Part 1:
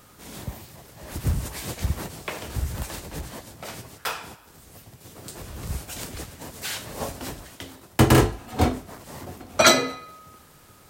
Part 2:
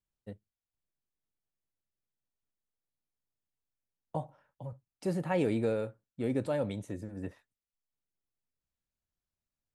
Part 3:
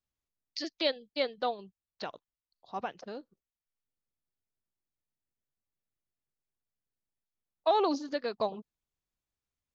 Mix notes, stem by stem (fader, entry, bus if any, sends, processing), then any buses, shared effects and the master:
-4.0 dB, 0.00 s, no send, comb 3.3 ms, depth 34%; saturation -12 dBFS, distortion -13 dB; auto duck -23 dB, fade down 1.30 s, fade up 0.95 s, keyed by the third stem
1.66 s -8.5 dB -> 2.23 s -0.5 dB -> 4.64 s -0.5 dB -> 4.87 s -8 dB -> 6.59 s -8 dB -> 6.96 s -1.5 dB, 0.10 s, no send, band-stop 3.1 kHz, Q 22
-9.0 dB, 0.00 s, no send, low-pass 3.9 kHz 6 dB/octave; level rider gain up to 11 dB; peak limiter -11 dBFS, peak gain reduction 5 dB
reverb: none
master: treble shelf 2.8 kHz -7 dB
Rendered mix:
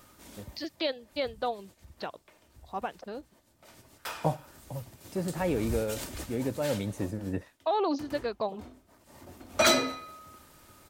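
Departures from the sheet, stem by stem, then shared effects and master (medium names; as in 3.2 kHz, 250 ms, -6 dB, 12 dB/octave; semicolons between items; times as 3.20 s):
stem 2 -8.5 dB -> -0.5 dB; master: missing treble shelf 2.8 kHz -7 dB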